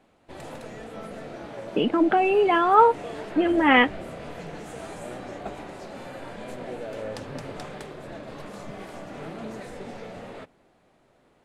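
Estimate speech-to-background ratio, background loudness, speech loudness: 18.0 dB, -38.0 LUFS, -20.0 LUFS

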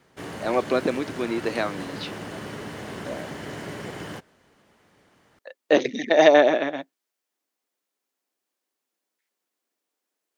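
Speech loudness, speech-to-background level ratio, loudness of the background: -21.5 LUFS, 14.5 dB, -36.0 LUFS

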